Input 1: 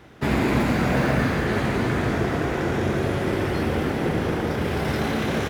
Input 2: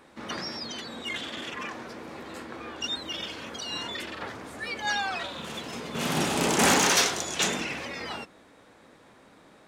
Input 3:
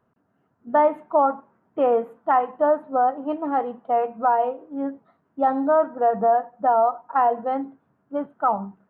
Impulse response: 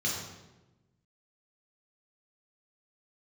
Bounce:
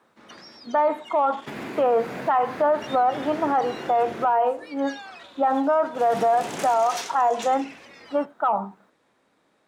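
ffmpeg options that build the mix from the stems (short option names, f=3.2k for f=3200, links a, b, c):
-filter_complex "[0:a]highpass=150,alimiter=limit=-15.5dB:level=0:latency=1:release=299,adelay=1250,volume=-7.5dB,asplit=3[a][b][c];[a]atrim=end=4.34,asetpts=PTS-STARTPTS,afade=t=out:st=4.336:d=0.004:c=hsin[d];[b]atrim=start=4.34:end=6.02,asetpts=PTS-STARTPTS,volume=0[e];[c]atrim=start=6.02,asetpts=PTS-STARTPTS,afade=t=in:d=0.004:c=hsin[f];[d][e][f]concat=n=3:v=0:a=1[g];[1:a]volume=-10.5dB[h];[2:a]lowshelf=f=390:g=-11,acontrast=66,volume=2.5dB,asplit=2[i][j];[j]apad=whole_len=297288[k];[g][k]sidechaincompress=threshold=-15dB:ratio=8:attack=43:release=278[l];[l][h][i]amix=inputs=3:normalize=0,lowshelf=f=120:g=-9.5,alimiter=limit=-13.5dB:level=0:latency=1:release=38"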